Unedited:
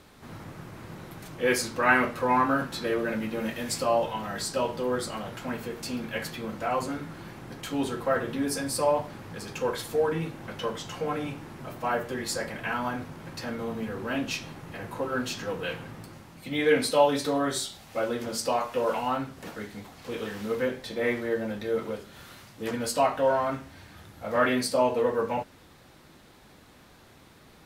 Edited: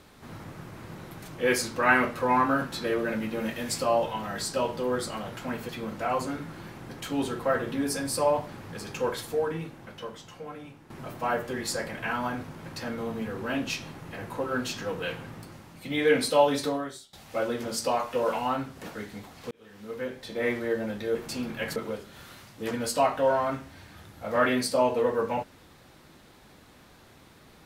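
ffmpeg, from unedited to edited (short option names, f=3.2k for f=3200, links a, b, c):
-filter_complex "[0:a]asplit=7[a][b][c][d][e][f][g];[a]atrim=end=5.692[h];[b]atrim=start=6.298:end=11.51,asetpts=PTS-STARTPTS,afade=t=out:st=3.372:d=1.84:c=qua:silence=0.266073[i];[c]atrim=start=11.51:end=17.74,asetpts=PTS-STARTPTS,afade=t=in:d=0.004:c=hsin:silence=0.266073,afade=t=out:st=5.76:d=0.47:c=qua:silence=0.0841395[j];[d]atrim=start=17.74:end=20.12,asetpts=PTS-STARTPTS,afade=t=in:d=0.004:c=hsin:silence=0.0841395,afade=t=out:st=2.376:d=0.004:c=hsin[k];[e]atrim=start=20.12:end=21.762,asetpts=PTS-STARTPTS,afade=t=in:d=1.04[l];[f]atrim=start=5.688:end=6.302[m];[g]atrim=start=21.758[n];[i][j][k][l]concat=n=4:v=0:a=1[o];[h][o]acrossfade=d=0.004:c1=hsin:c2=hsin[p];[p][m]acrossfade=d=0.004:c1=hsin:c2=hsin[q];[q][n]acrossfade=d=0.004:c1=hsin:c2=hsin"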